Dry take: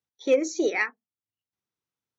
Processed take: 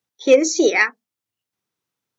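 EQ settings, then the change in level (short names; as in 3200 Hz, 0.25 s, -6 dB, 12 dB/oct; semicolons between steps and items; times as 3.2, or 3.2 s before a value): HPF 100 Hz; dynamic EQ 5100 Hz, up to +6 dB, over -46 dBFS, Q 1.1; +8.5 dB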